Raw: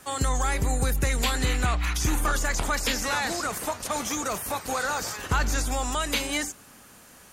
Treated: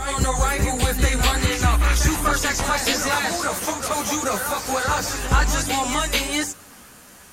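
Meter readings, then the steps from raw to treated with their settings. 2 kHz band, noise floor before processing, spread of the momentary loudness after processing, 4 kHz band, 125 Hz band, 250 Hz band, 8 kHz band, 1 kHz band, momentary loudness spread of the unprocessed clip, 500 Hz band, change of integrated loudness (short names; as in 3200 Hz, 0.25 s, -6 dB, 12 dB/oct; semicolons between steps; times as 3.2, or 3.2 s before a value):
+5.5 dB, -51 dBFS, 5 LU, +6.0 dB, +5.5 dB, +6.0 dB, +6.0 dB, +6.0 dB, 4 LU, +6.0 dB, +5.5 dB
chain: reverse echo 0.438 s -6.5 dB; chorus voices 2, 1.3 Hz, delay 13 ms, depth 3 ms; gain +8 dB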